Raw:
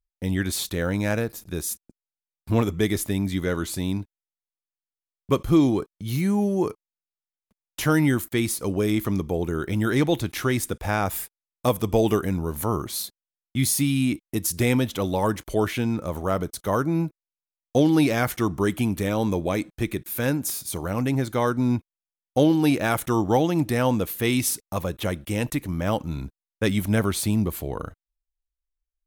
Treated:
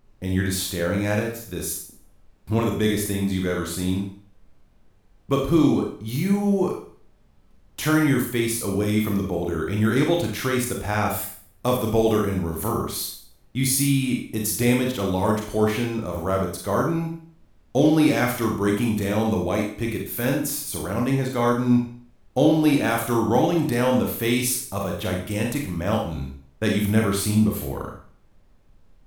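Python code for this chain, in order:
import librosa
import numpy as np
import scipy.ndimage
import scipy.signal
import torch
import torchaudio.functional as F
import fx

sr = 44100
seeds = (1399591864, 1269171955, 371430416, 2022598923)

y = fx.dmg_noise_colour(x, sr, seeds[0], colour='brown', level_db=-56.0)
y = fx.rev_schroeder(y, sr, rt60_s=0.49, comb_ms=29, drr_db=0.0)
y = F.gain(torch.from_numpy(y), -1.5).numpy()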